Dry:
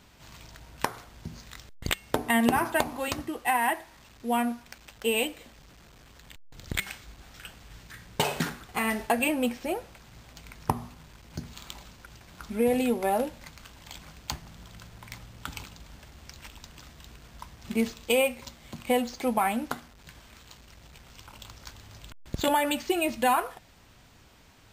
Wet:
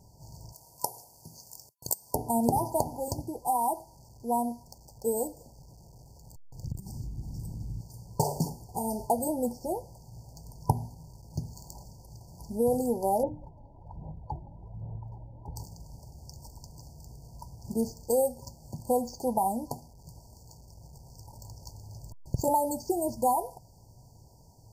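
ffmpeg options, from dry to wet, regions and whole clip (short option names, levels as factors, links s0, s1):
-filter_complex "[0:a]asettb=1/sr,asplit=3[s0][s1][s2];[s0]atrim=end=0.524[s3];[s1]atrim=start=0.52:end=2.15,asetpts=PTS-STARTPTS,afade=t=in:d=0.004:c=qsin,afade=t=out:st=1.626:d=0.004:c=qsin,highpass=f=670:p=1,equalizer=f=12000:t=o:w=1.1:g=10.5[s4];[s2]atrim=start=2.146[s5];[s3][s4]acrossfade=d=0.004:c1=hsin:c2=qsin[s6];[s6][s5]acrossfade=d=0.004:c1=qsin:c2=hsin,asettb=1/sr,asplit=3[s7][s8][s9];[s7]atrim=end=6.644[s10];[s8]atrim=start=6.64:end=7.81,asetpts=PTS-STARTPTS,afade=t=in:d=0.004:c=qsin,afade=t=out:st=1.166:d=0.004:c=qsin,lowshelf=f=390:t=q:w=1.5:g=12.5,acompressor=threshold=0.0178:ratio=6:attack=3.2:release=140:knee=1:detection=peak[s11];[s9]atrim=start=7.806[s12];[s10][s11]acrossfade=d=0.004:c1=hsin:c2=qsin[s13];[s13][s12]acrossfade=d=0.004:c1=qsin:c2=hsin,asettb=1/sr,asplit=3[s14][s15][s16];[s14]atrim=end=13.234[s17];[s15]atrim=start=13.23:end=15.56,asetpts=PTS-STARTPTS,afade=t=in:d=0.004:c=qsin,afade=t=out:st=2.326:d=0.004:c=qsin,lowpass=f=1800:w=0.5412,lowpass=f=1800:w=1.3066,aphaser=in_gain=1:out_gain=1:delay=3.6:decay=0.56:speed=1.2:type=sinusoidal,bandreject=f=60:t=h:w=6,bandreject=f=120:t=h:w=6,bandreject=f=180:t=h:w=6,bandreject=f=240:t=h:w=6,bandreject=f=300:t=h:w=6,bandreject=f=360:t=h:w=6[s18];[s16]atrim=start=15.556[s19];[s17][s18]acrossfade=d=0.004:c1=hsin:c2=qsin[s20];[s20][s19]acrossfade=d=0.004:c1=qsin:c2=hsin,afftfilt=real='re*(1-between(b*sr/4096,1000,4400))':imag='im*(1-between(b*sr/4096,1000,4400))':win_size=4096:overlap=0.75,equalizer=f=125:t=o:w=1:g=9,equalizer=f=250:t=o:w=1:g=-6,equalizer=f=4000:t=o:w=1:g=-3"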